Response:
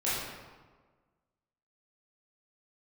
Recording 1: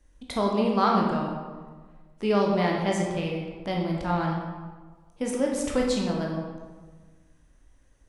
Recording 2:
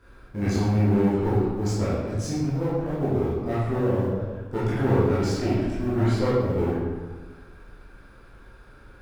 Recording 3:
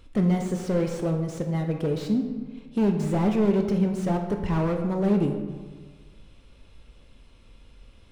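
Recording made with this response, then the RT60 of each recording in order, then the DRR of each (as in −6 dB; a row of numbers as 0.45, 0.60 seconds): 2; 1.5, 1.5, 1.5 seconds; −1.5, −10.5, 4.0 decibels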